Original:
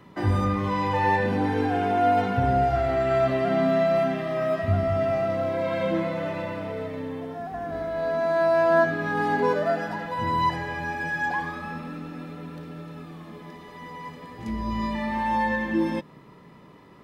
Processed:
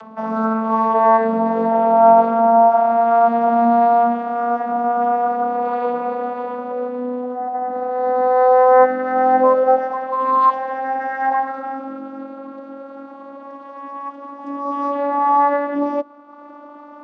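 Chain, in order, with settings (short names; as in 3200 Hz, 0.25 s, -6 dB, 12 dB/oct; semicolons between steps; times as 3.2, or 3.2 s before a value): vocoder on a gliding note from A3, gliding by +5 st; band shelf 850 Hz +13 dB; upward compressor, threshold -32 dBFS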